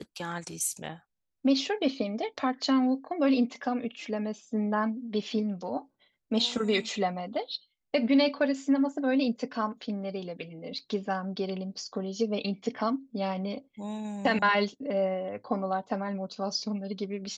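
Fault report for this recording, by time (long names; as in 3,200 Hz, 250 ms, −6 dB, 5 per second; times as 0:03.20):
0:10.79: drop-out 3.2 ms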